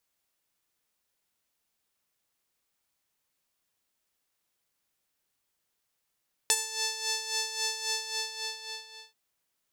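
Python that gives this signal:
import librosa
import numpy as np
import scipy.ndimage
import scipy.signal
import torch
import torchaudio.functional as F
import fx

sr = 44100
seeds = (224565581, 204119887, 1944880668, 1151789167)

y = fx.sub_patch_tremolo(sr, seeds[0], note=81, wave='saw', wave2='sine', interval_st=-12, detune_cents=16, level2_db=-1.5, sub_db=-25, noise_db=-29.5, kind='bandpass', cutoff_hz=4300.0, q=2.0, env_oct=1.0, env_decay_s=0.27, env_sustain_pct=40, attack_ms=1.1, decay_s=0.05, sustain_db=-14.5, release_s=1.27, note_s=1.37, lfo_hz=3.7, tremolo_db=9.5)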